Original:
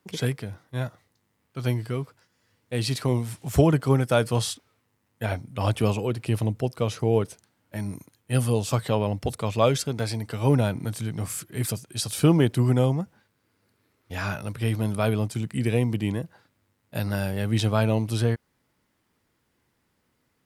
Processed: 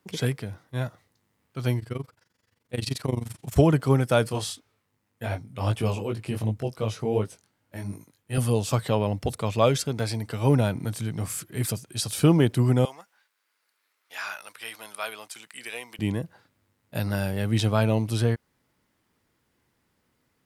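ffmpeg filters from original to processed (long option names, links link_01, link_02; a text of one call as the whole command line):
ffmpeg -i in.wav -filter_complex "[0:a]asettb=1/sr,asplit=3[link_01][link_02][link_03];[link_01]atrim=end=1.794[link_04];[link_02]atrim=start=1.79:end=3.57,asetpts=PTS-STARTPTS,afade=type=in:duration=0.004:curve=qsin,afade=type=out:start_time=1.776:duration=0.004:curve=qsin,tremolo=f=23:d=0.889[link_05];[link_03]atrim=start=3.566[link_06];[link_04][link_05]acrossfade=duration=0.004:curve1=hsin:curve2=qsin[link_07];[link_07][link_06]acrossfade=duration=0.004:curve1=qsin:curve2=hsin,asettb=1/sr,asplit=3[link_08][link_09][link_10];[link_08]atrim=end=4.294[link_11];[link_09]atrim=start=4.29:end=8.38,asetpts=PTS-STARTPTS,afade=type=in:duration=0.004:curve=qsin,afade=type=out:start_time=4.086:duration=0.004:curve=qsin,flanger=delay=18.5:depth=3.4:speed=2.7[link_12];[link_10]atrim=start=8.376[link_13];[link_11][link_12]acrossfade=duration=0.004:curve1=hsin:curve2=qsin[link_14];[link_14][link_13]acrossfade=duration=0.004:curve1=qsin:curve2=hsin,asettb=1/sr,asplit=3[link_15][link_16][link_17];[link_15]atrim=end=12.854[link_18];[link_16]atrim=start=12.85:end=15.99,asetpts=PTS-STARTPTS,afade=type=in:duration=0.004:curve=qsin,afade=type=out:start_time=3.136:duration=0.004:curve=qsin,highpass=1100[link_19];[link_17]atrim=start=15.986[link_20];[link_18][link_19]acrossfade=duration=0.004:curve1=hsin:curve2=qsin[link_21];[link_21][link_20]acrossfade=duration=0.004:curve1=qsin:curve2=hsin" out.wav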